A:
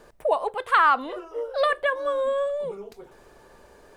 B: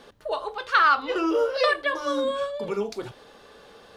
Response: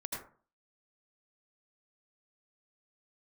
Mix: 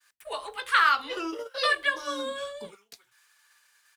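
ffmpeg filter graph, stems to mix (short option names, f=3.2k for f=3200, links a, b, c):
-filter_complex "[0:a]highpass=f=1.5k:w=0.5412,highpass=f=1.5k:w=1.3066,agate=range=-33dB:threshold=-56dB:ratio=3:detection=peak,volume=1dB,asplit=2[a][b];[1:a]adynamicequalizer=threshold=0.0224:dfrequency=2100:dqfactor=0.7:tfrequency=2100:tqfactor=0.7:attack=5:release=100:ratio=0.375:range=3:mode=boostabove:tftype=highshelf,adelay=13,volume=-8.5dB[c];[b]apad=whole_len=175429[d];[c][d]sidechaingate=range=-36dB:threshold=-54dB:ratio=16:detection=peak[e];[a][e]amix=inputs=2:normalize=0,highshelf=f=3.9k:g=5.5"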